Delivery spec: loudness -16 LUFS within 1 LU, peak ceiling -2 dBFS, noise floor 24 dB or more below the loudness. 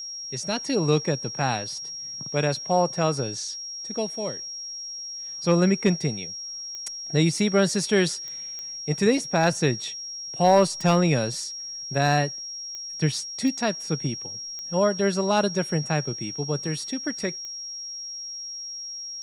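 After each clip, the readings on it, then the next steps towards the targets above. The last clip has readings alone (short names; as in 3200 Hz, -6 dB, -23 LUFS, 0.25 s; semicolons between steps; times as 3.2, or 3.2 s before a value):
clicks 8; steady tone 5600 Hz; tone level -33 dBFS; loudness -25.5 LUFS; peak -8.5 dBFS; loudness target -16.0 LUFS
-> de-click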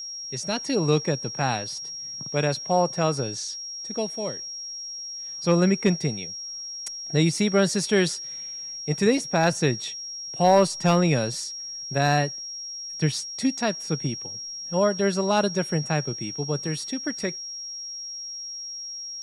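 clicks 0; steady tone 5600 Hz; tone level -33 dBFS
-> notch 5600 Hz, Q 30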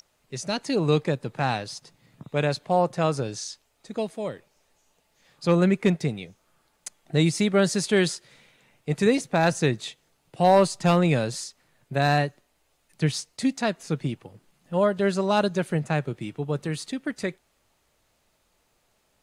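steady tone none; loudness -25.0 LUFS; peak -9.0 dBFS; loudness target -16.0 LUFS
-> gain +9 dB; limiter -2 dBFS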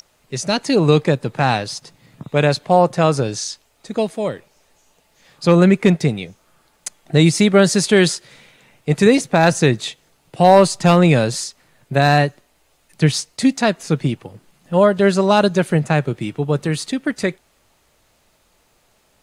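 loudness -16.5 LUFS; peak -2.0 dBFS; noise floor -60 dBFS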